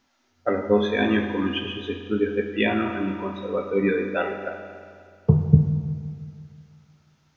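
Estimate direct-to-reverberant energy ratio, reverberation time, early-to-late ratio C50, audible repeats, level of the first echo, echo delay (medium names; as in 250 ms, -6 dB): 4.5 dB, 2.2 s, 6.0 dB, no echo, no echo, no echo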